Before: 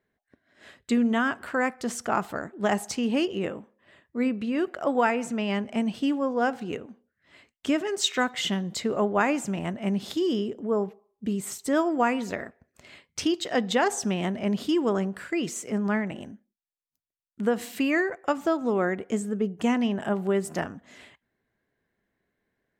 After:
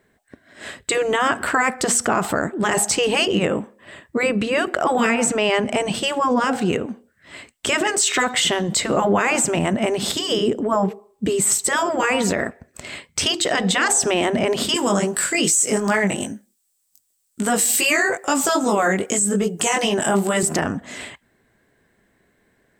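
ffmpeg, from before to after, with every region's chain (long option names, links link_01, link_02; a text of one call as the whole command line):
ffmpeg -i in.wav -filter_complex "[0:a]asettb=1/sr,asplit=3[link_01][link_02][link_03];[link_01]atrim=end=14.744[link_04];[link_02]atrim=start=14.74:end=20.43,asetpts=PTS-STARTPTS,afade=type=in:duration=0.004:curve=qsin,afade=type=out:start_time=5.686:duration=0.004:curve=qsin,bass=frequency=250:gain=-3,treble=frequency=4000:gain=14,flanger=delay=18:depth=2.9:speed=2.5[link_05];[link_03]atrim=start=20.426[link_06];[link_04][link_05]acrossfade=duration=0.004:curve1=hsin:curve2=qsin[link_07];[link_07][link_06]acrossfade=duration=0.004:curve1=qsin:curve2=hsin,afftfilt=real='re*lt(hypot(re,im),0.316)':imag='im*lt(hypot(re,im),0.316)':win_size=1024:overlap=0.75,equalizer=frequency=8000:width=5.8:gain=11,alimiter=level_in=23.5dB:limit=-1dB:release=50:level=0:latency=1,volume=-8dB" out.wav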